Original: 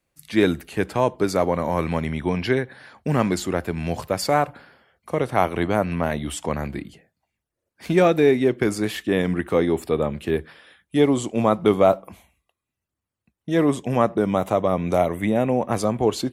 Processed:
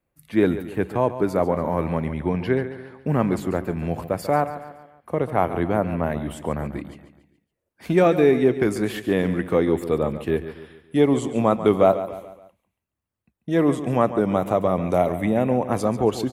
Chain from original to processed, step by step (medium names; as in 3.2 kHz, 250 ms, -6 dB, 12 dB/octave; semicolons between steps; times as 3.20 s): peaking EQ 5.5 kHz -14 dB 2.2 oct, from 6.77 s -5.5 dB; feedback delay 141 ms, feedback 45%, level -12.5 dB